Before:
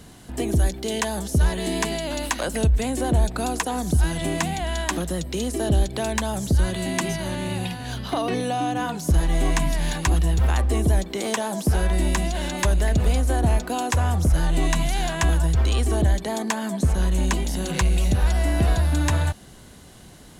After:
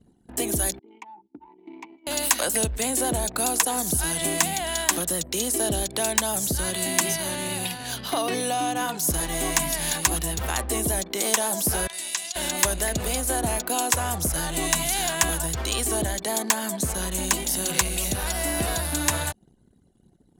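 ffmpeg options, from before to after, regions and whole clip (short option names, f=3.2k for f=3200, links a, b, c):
-filter_complex "[0:a]asettb=1/sr,asplit=3[a][b][c];[a]atrim=end=0.794[d];[b]atrim=start=0.79:end=2.07,asetpts=PTS-STARTPTS,afade=t=in:d=0.004:c=qsin,afade=t=out:st=1.276:d=0.004:c=qsin,asplit=3[e][f][g];[e]bandpass=f=300:t=q:w=8,volume=0dB[h];[f]bandpass=f=870:t=q:w=8,volume=-6dB[i];[g]bandpass=f=2.24k:t=q:w=8,volume=-9dB[j];[h][i][j]amix=inputs=3:normalize=0,equalizer=f=93:w=0.39:g=-9.5,volume=28.5dB,asoftclip=hard,volume=-28.5dB[k];[c]atrim=start=2.066[l];[d][k]acrossfade=d=0.004:c1=hsin:c2=qsin[m];[m][l]acrossfade=d=0.004:c1=qsin:c2=hsin,asettb=1/sr,asplit=3[n][o][p];[n]atrim=end=11.874[q];[o]atrim=start=11.87:end=12.36,asetpts=PTS-STARTPTS,afade=t=in:d=0.004:c=qsin,afade=t=out:st=0.486:d=0.004:c=qsin,bandpass=f=5.3k:t=q:w=0.65,acrossover=split=6700[r][s];[s]acompressor=threshold=-40dB:ratio=4:attack=1:release=60[t];[r][t]amix=inputs=2:normalize=0[u];[p]atrim=start=12.356[v];[q][u]acrossfade=d=0.004:c1=hsin:c2=qsin[w];[w][v]acrossfade=d=0.004:c1=qsin:c2=hsin,anlmdn=0.398,aemphasis=mode=production:type=bsi"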